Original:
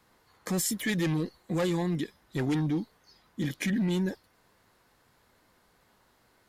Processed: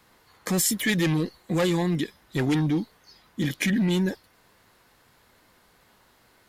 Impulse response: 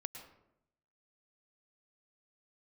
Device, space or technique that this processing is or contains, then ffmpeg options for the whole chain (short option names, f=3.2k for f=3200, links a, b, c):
presence and air boost: -af "equalizer=f=2.8k:t=o:w=1.5:g=3,highshelf=f=10k:g=4,volume=4.5dB"